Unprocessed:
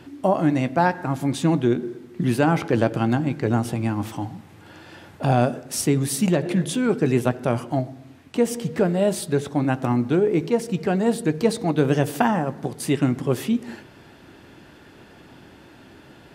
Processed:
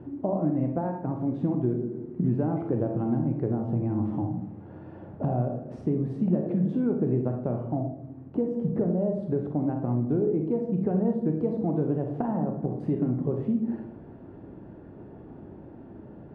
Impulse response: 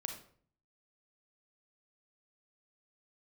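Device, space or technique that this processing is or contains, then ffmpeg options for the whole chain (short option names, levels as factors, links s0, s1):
television next door: -filter_complex "[0:a]asettb=1/sr,asplit=3[s0][s1][s2];[s0]atrim=end=7.844[s3];[s1]atrim=start=7.84:end=9.23,asetpts=PTS-STARTPTS,afade=t=in:d=0.004:c=qsin,afade=t=out:st=1.386:d=0.004:c=qsin,equalizer=f=3000:t=o:w=1.9:g=-4.5[s4];[s2]atrim=start=9.226[s5];[s3][s4]acrossfade=d=0.004:c1=hsin:c2=qsin[s6];[s6][s5]acrossfade=d=0.004:c1=qsin:c2=hsin,acompressor=threshold=0.0447:ratio=4,lowpass=580[s7];[1:a]atrim=start_sample=2205[s8];[s7][s8]afir=irnorm=-1:irlink=0,volume=1.78"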